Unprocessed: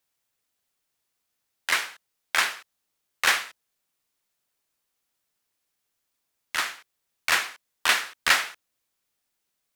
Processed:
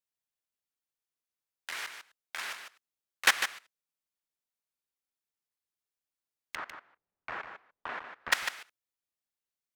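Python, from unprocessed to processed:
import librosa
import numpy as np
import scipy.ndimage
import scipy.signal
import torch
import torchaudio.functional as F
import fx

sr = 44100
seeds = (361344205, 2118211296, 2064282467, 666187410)

y = fx.lowpass(x, sr, hz=1100.0, slope=12, at=(6.55, 8.32))
y = fx.level_steps(y, sr, step_db=19)
y = y + 10.0 ** (-8.5 / 20.0) * np.pad(y, (int(150 * sr / 1000.0), 0))[:len(y)]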